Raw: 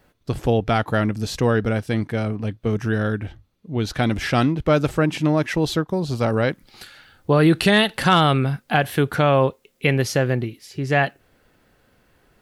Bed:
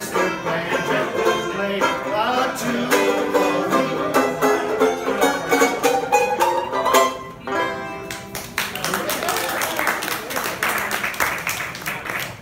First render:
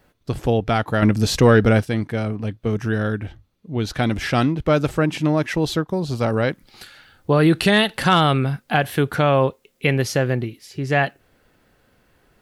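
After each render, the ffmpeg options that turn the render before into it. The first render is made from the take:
-filter_complex "[0:a]asettb=1/sr,asplit=3[s0][s1][s2];[s0]atrim=end=1.024[s3];[s1]atrim=start=1.02:end=1.85,asetpts=PTS-STARTPTS,afade=t=in:d=0.004:c=qsin,afade=t=out:st=0.826:d=0.004:c=qsin,acontrast=85[s4];[s2]atrim=start=1.846[s5];[s3][s4]acrossfade=d=0.004:c1=hsin:c2=qsin[s6];[s6][s5]acrossfade=d=0.004:c1=qsin:c2=hsin"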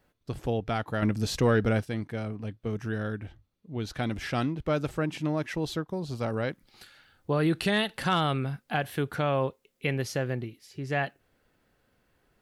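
-af "volume=0.316"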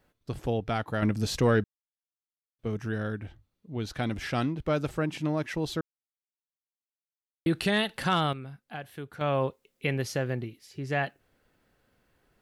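-filter_complex "[0:a]asplit=7[s0][s1][s2][s3][s4][s5][s6];[s0]atrim=end=1.64,asetpts=PTS-STARTPTS,afade=t=out:st=1.636:d=0.004:c=hsin[s7];[s1]atrim=start=1.64:end=2.59,asetpts=PTS-STARTPTS,volume=0[s8];[s2]atrim=start=2.59:end=5.81,asetpts=PTS-STARTPTS,afade=t=in:d=0.004:c=hsin,afade=t=out:st=3.216:d=0.004:c=hsin[s9];[s3]atrim=start=5.81:end=7.46,asetpts=PTS-STARTPTS,volume=0[s10];[s4]atrim=start=7.46:end=8.33,asetpts=PTS-STARTPTS,afade=t=in:d=0.004:c=hsin,afade=t=out:st=0.67:d=0.2:c=log:silence=0.298538[s11];[s5]atrim=start=8.33:end=9.21,asetpts=PTS-STARTPTS,volume=0.299[s12];[s6]atrim=start=9.21,asetpts=PTS-STARTPTS,afade=t=in:d=0.2:c=log:silence=0.298538[s13];[s7][s8][s9][s10][s11][s12][s13]concat=n=7:v=0:a=1"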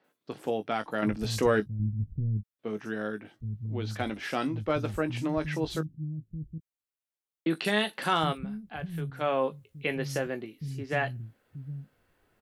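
-filter_complex "[0:a]asplit=2[s0][s1];[s1]adelay=19,volume=0.316[s2];[s0][s2]amix=inputs=2:normalize=0,acrossover=split=180|5300[s3][s4][s5];[s5]adelay=40[s6];[s3]adelay=770[s7];[s7][s4][s6]amix=inputs=3:normalize=0"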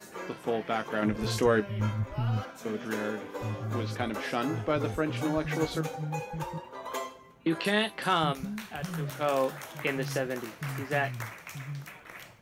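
-filter_complex "[1:a]volume=0.0944[s0];[0:a][s0]amix=inputs=2:normalize=0"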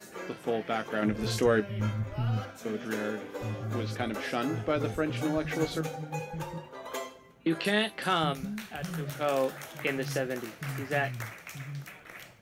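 -af "equalizer=f=1000:w=3.9:g=-6,bandreject=f=50:t=h:w=6,bandreject=f=100:t=h:w=6,bandreject=f=150:t=h:w=6"

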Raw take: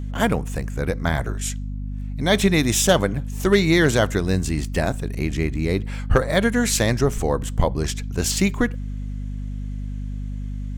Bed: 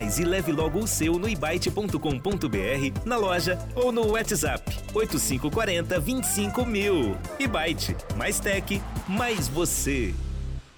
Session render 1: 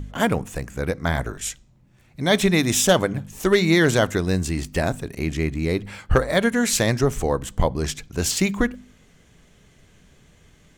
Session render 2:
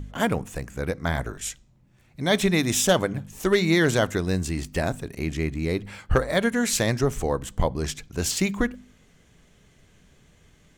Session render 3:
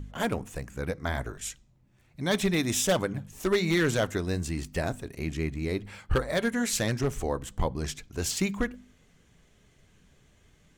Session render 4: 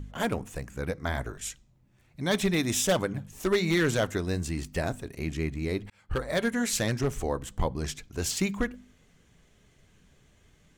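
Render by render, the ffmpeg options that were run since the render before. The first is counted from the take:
-af "bandreject=f=50:t=h:w=4,bandreject=f=100:t=h:w=4,bandreject=f=150:t=h:w=4,bandreject=f=200:t=h:w=4,bandreject=f=250:t=h:w=4"
-af "volume=0.708"
-af "aeval=exprs='0.237*(abs(mod(val(0)/0.237+3,4)-2)-1)':c=same,flanger=delay=0.7:depth=2.5:regen=-71:speed=1.3:shape=sinusoidal"
-filter_complex "[0:a]asplit=2[s0][s1];[s0]atrim=end=5.9,asetpts=PTS-STARTPTS,afade=t=out:st=5.896:d=0.004:c=hsin[s2];[s1]atrim=start=5.9,asetpts=PTS-STARTPTS,afade=t=in:d=0.44[s3];[s2][s3]concat=n=2:v=0:a=1"

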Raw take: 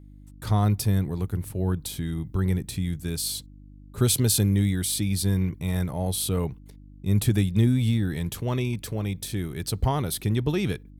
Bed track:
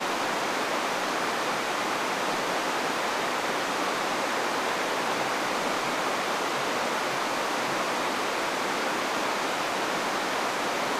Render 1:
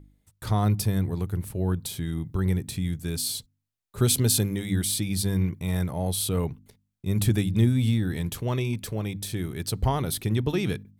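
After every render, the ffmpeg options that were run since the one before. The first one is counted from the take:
-af "bandreject=f=50:t=h:w=4,bandreject=f=100:t=h:w=4,bandreject=f=150:t=h:w=4,bandreject=f=200:t=h:w=4,bandreject=f=250:t=h:w=4,bandreject=f=300:t=h:w=4"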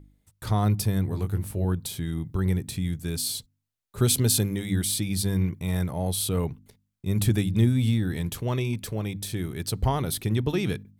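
-filter_complex "[0:a]asettb=1/sr,asplit=3[s0][s1][s2];[s0]atrim=end=1.094[s3];[s1]atrim=start=1.09:end=1.65,asetpts=PTS-STARTPTS,afade=t=in:d=0.004:c=qsin,afade=t=out:st=0.556:d=0.004:c=qsin,asplit=2[s4][s5];[s5]adelay=20,volume=0.562[s6];[s4][s6]amix=inputs=2:normalize=0,atrim=end_sample=24696[s7];[s2]atrim=start=1.646[s8];[s3][s7]acrossfade=d=0.004:c1=hsin:c2=qsin[s9];[s9][s8]acrossfade=d=0.004:c1=qsin:c2=hsin"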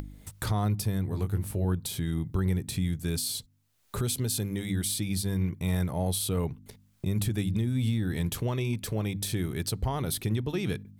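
-af "acompressor=mode=upward:threshold=0.0447:ratio=2.5,alimiter=limit=0.106:level=0:latency=1:release=291"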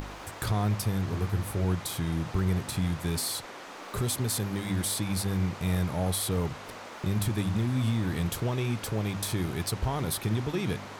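-filter_complex "[1:a]volume=0.168[s0];[0:a][s0]amix=inputs=2:normalize=0"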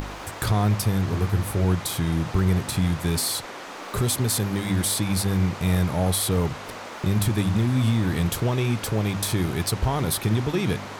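-af "volume=2"

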